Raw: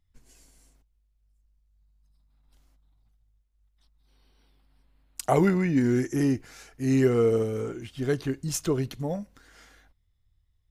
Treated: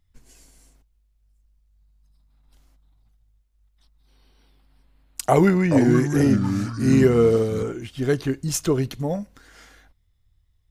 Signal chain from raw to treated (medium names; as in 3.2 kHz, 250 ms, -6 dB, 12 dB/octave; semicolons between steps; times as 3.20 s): 5.23–7.63 s: ever faster or slower copies 414 ms, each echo -4 st, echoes 2, each echo -6 dB; trim +5 dB